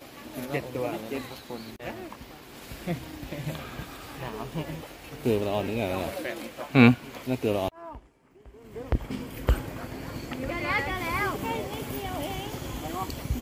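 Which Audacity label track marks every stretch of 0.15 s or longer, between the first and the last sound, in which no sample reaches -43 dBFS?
7.990000	8.460000	silence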